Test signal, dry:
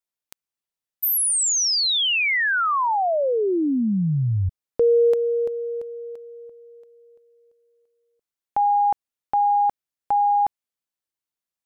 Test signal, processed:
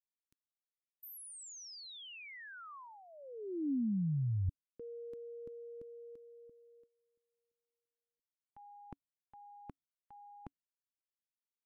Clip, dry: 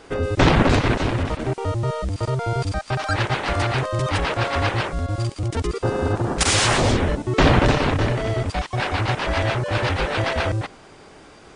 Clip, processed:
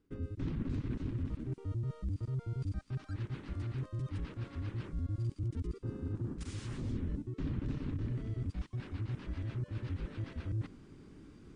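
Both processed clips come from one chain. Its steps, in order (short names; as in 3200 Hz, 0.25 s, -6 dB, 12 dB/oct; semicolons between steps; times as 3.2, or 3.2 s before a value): reverse; compressor 5:1, threshold -31 dBFS; reverse; gate -48 dBFS, range -14 dB; EQ curve 280 Hz 0 dB, 710 Hz -25 dB, 1100 Hz -17 dB; gain -2.5 dB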